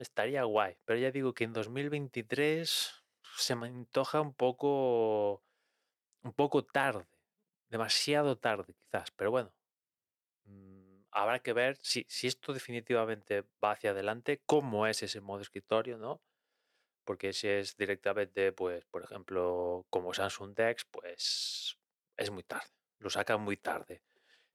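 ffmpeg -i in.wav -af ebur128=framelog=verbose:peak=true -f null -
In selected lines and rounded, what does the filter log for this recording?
Integrated loudness:
  I:         -34.1 LUFS
  Threshold: -44.6 LUFS
Loudness range:
  LRA:         3.6 LU
  Threshold: -55.0 LUFS
  LRA low:   -37.0 LUFS
  LRA high:  -33.4 LUFS
True peak:
  Peak:      -14.8 dBFS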